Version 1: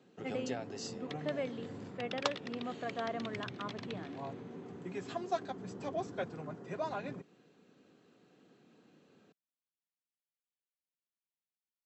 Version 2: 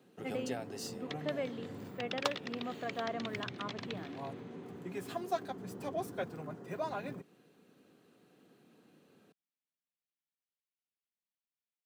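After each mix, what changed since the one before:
first sound: remove brick-wall FIR low-pass 7.9 kHz; second sound +3.0 dB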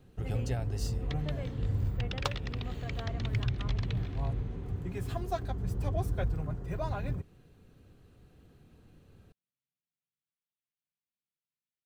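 speech -7.0 dB; master: remove high-pass 200 Hz 24 dB/octave

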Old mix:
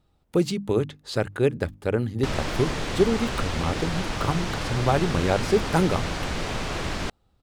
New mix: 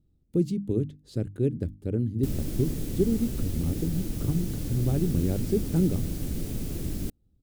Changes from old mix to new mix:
background: remove distance through air 98 m; master: add FFT filter 300 Hz 0 dB, 950 Hz -26 dB, 12 kHz -10 dB

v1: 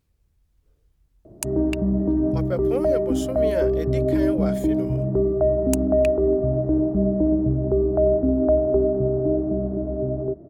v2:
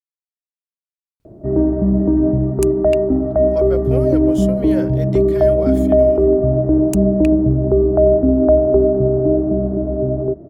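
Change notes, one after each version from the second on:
speech: entry +1.20 s; background +6.5 dB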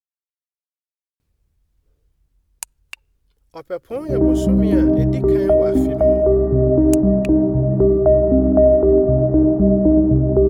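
background: entry +2.65 s

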